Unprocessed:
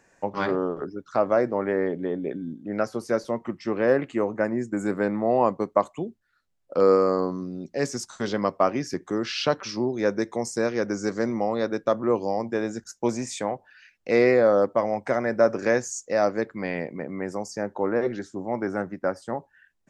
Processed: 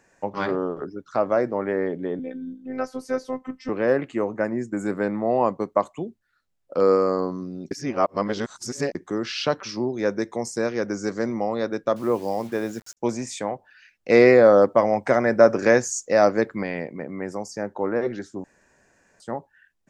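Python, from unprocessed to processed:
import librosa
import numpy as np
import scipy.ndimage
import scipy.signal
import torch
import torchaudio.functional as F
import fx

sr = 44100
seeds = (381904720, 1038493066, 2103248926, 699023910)

y = fx.robotise(x, sr, hz=258.0, at=(2.19, 3.69))
y = fx.quant_dither(y, sr, seeds[0], bits=8, dither='none', at=(11.96, 12.97))
y = fx.edit(y, sr, fx.reverse_span(start_s=7.71, length_s=1.24),
    fx.clip_gain(start_s=14.1, length_s=2.53, db=5.0),
    fx.room_tone_fill(start_s=18.44, length_s=0.76), tone=tone)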